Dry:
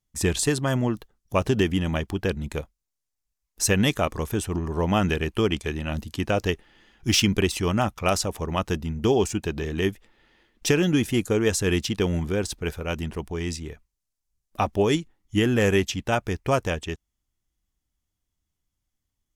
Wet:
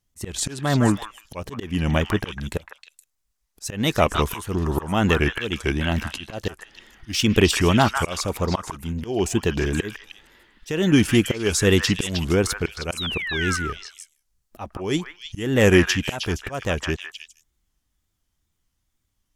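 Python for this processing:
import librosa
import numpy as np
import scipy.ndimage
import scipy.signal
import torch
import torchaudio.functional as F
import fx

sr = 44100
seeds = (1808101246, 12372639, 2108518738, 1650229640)

p1 = fx.auto_swell(x, sr, attack_ms=330.0)
p2 = fx.spec_paint(p1, sr, seeds[0], shape='fall', start_s=12.97, length_s=0.6, low_hz=1100.0, high_hz=3800.0, level_db=-35.0)
p3 = fx.wow_flutter(p2, sr, seeds[1], rate_hz=2.1, depth_cents=140.0)
p4 = p3 + fx.echo_stepped(p3, sr, ms=156, hz=1400.0, octaves=1.4, feedback_pct=70, wet_db=-1.0, dry=0)
y = p4 * 10.0 ** (6.0 / 20.0)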